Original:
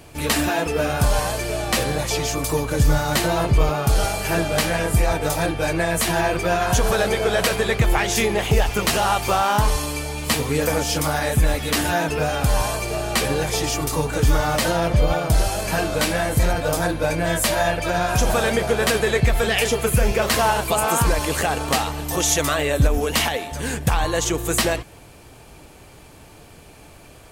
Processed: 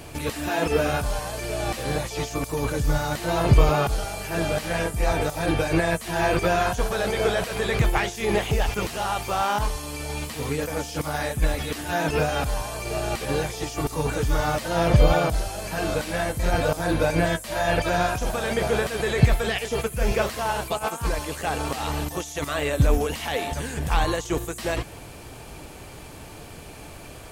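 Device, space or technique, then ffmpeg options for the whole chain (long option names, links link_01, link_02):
de-esser from a sidechain: -filter_complex "[0:a]asplit=2[link_01][link_02];[link_02]highpass=6600,apad=whole_len=1204481[link_03];[link_01][link_03]sidechaincompress=threshold=-44dB:ratio=10:attack=2.4:release=22,volume=4dB"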